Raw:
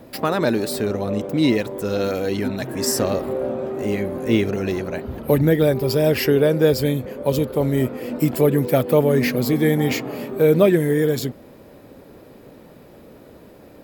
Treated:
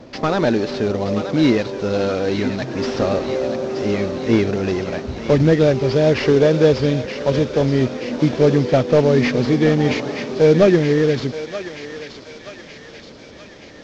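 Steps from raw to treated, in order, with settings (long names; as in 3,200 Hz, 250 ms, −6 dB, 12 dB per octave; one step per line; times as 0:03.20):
variable-slope delta modulation 32 kbit/s
on a send: feedback echo with a high-pass in the loop 926 ms, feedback 68%, high-pass 1,200 Hz, level −7 dB
on the sum: level +3 dB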